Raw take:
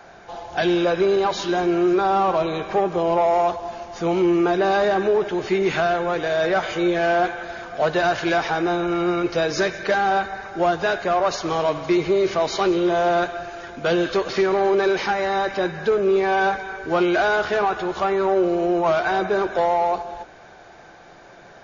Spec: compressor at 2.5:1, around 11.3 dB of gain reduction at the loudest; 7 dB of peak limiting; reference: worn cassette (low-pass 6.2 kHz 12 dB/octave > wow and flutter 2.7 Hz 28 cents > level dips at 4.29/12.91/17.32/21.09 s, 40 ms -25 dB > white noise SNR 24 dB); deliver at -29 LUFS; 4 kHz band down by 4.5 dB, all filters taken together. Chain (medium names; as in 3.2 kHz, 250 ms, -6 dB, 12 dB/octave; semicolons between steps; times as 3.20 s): peaking EQ 4 kHz -5 dB; compression 2.5:1, threshold -33 dBFS; peak limiter -26.5 dBFS; low-pass 6.2 kHz 12 dB/octave; wow and flutter 2.7 Hz 28 cents; level dips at 4.29/12.91/17.32/21.09 s, 40 ms -25 dB; white noise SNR 24 dB; trim +5 dB